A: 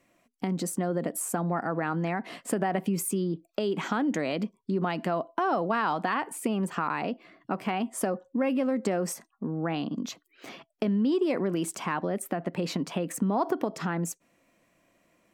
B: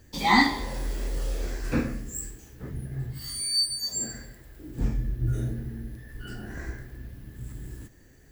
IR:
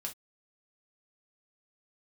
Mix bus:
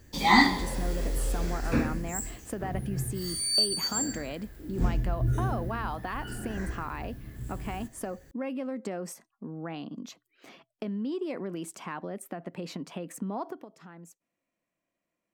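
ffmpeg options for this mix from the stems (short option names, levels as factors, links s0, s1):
-filter_complex "[0:a]bandreject=f=60:t=h:w=6,bandreject=f=120:t=h:w=6,volume=0.422,afade=t=out:st=13.37:d=0.29:silence=0.281838[s0];[1:a]volume=1[s1];[s0][s1]amix=inputs=2:normalize=0"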